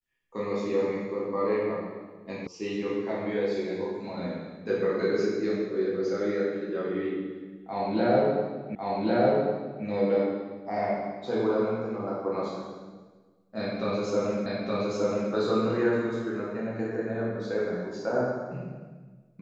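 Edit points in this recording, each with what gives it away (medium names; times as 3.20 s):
2.47 s: sound stops dead
8.75 s: repeat of the last 1.1 s
14.46 s: repeat of the last 0.87 s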